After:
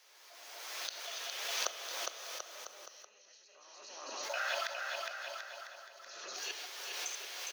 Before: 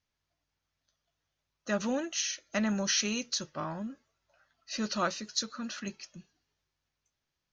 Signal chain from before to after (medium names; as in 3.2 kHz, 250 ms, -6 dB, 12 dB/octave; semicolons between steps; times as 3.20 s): chunks repeated in reverse 148 ms, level -4 dB; recorder AGC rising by 39 dB/s; inverted gate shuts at -28 dBFS, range -39 dB; steep high-pass 410 Hz 36 dB/octave; treble shelf 4.8 kHz +4 dB; bouncing-ball echo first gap 410 ms, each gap 0.8×, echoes 5; on a send at -10 dB: reverberation RT60 1.1 s, pre-delay 6 ms; on the sum: dynamic bell 2.8 kHz, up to +5 dB, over -57 dBFS, Q 1.3; swell ahead of each attack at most 30 dB/s; trim +4 dB